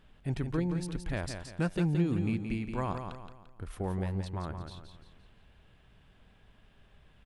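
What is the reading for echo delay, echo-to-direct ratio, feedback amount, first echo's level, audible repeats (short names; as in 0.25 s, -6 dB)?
0.172 s, -6.0 dB, 40%, -7.0 dB, 4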